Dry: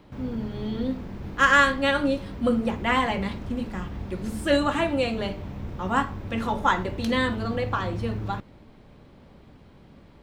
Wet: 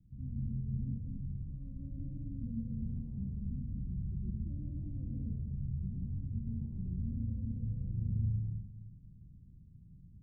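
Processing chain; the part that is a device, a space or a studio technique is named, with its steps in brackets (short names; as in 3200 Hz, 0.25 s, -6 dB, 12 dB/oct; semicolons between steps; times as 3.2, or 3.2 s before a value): club heard from the street (limiter -17.5 dBFS, peak gain reduction 11 dB; LPF 170 Hz 24 dB/oct; reverb RT60 1.2 s, pre-delay 97 ms, DRR -2.5 dB); gain -6 dB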